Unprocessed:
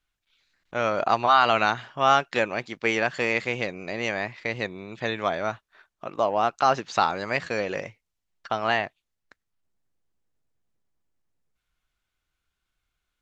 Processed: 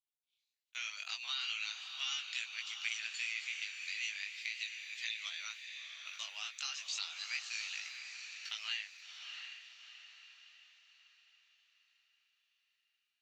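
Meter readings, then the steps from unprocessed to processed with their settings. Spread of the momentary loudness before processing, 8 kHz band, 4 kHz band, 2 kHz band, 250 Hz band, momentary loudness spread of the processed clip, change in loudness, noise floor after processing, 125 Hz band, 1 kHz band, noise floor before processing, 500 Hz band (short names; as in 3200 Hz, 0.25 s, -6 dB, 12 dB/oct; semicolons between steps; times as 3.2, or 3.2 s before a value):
12 LU, n/a, -4.0 dB, -12.0 dB, under -40 dB, 11 LU, -14.5 dB, under -85 dBFS, under -40 dB, -32.5 dB, -82 dBFS, under -40 dB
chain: Chebyshev high-pass 2600 Hz, order 3; gate -57 dBFS, range -21 dB; high shelf 5300 Hz +11.5 dB; compressor 3:1, threshold -41 dBFS, peak gain reduction 13.5 dB; chorus 0.38 Hz, delay 17.5 ms, depth 2.9 ms; diffused feedback echo 0.683 s, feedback 45%, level -6.5 dB; gain +4.5 dB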